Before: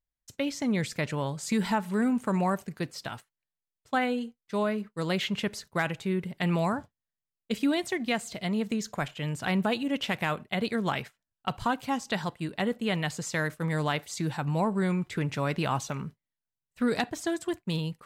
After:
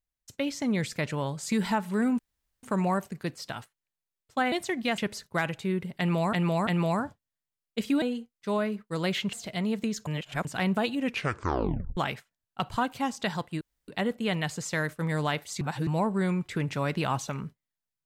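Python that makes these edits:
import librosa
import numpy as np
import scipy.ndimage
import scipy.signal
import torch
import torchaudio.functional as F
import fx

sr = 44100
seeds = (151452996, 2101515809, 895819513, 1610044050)

y = fx.edit(x, sr, fx.insert_room_tone(at_s=2.19, length_s=0.44),
    fx.swap(start_s=4.08, length_s=1.31, other_s=7.75, other_length_s=0.46),
    fx.repeat(start_s=6.4, length_s=0.34, count=3),
    fx.reverse_span(start_s=8.95, length_s=0.38),
    fx.tape_stop(start_s=9.87, length_s=0.98),
    fx.insert_room_tone(at_s=12.49, length_s=0.27),
    fx.reverse_span(start_s=14.22, length_s=0.26), tone=tone)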